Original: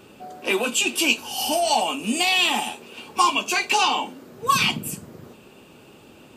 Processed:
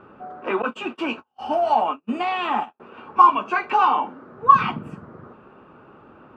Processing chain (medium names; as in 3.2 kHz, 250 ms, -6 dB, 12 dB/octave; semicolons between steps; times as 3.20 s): 0.62–2.80 s: gate -25 dBFS, range -42 dB; resonant low-pass 1.3 kHz, resonance Q 3.3; trim -1 dB